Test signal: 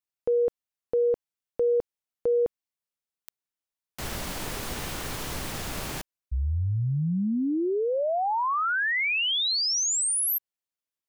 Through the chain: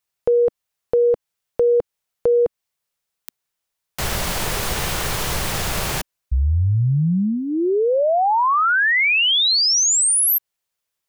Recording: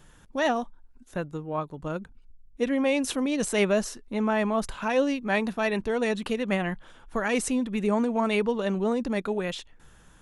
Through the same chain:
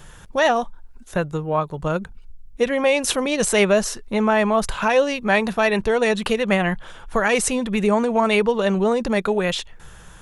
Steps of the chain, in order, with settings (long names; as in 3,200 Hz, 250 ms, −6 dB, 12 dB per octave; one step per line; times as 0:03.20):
parametric band 270 Hz −11 dB 0.46 octaves
in parallel at +2 dB: downward compressor, threshold −30 dBFS
on the sum: level +4.5 dB